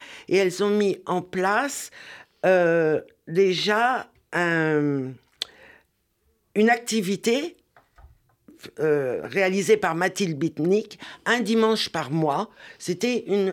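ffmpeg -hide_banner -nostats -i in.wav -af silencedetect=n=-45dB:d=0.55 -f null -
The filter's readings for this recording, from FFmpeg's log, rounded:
silence_start: 5.76
silence_end: 6.56 | silence_duration: 0.79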